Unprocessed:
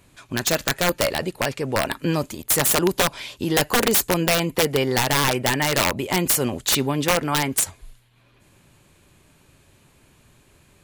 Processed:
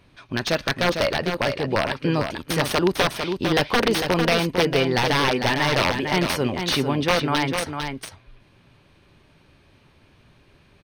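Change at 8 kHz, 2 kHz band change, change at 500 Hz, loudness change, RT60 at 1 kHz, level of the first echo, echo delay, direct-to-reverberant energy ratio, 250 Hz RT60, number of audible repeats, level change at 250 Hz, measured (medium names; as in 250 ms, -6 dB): -11.5 dB, +1.0 dB, +1.0 dB, -1.0 dB, no reverb, -6.5 dB, 451 ms, no reverb, no reverb, 1, +1.0 dB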